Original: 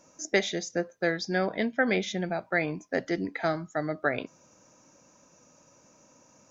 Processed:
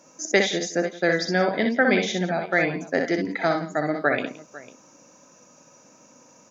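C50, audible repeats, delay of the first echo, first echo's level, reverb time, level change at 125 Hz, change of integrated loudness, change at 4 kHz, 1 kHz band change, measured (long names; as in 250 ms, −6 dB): no reverb audible, 3, 61 ms, −4.5 dB, no reverb audible, +4.5 dB, +6.0 dB, +6.5 dB, +6.5 dB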